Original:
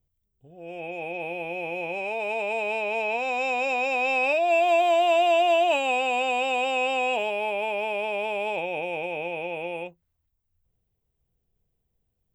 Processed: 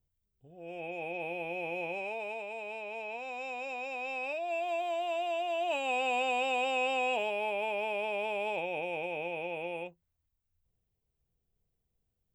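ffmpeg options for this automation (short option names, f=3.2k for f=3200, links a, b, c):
-af "volume=2.5dB,afade=t=out:st=1.83:d=0.64:silence=0.398107,afade=t=in:st=5.53:d=0.55:silence=0.421697"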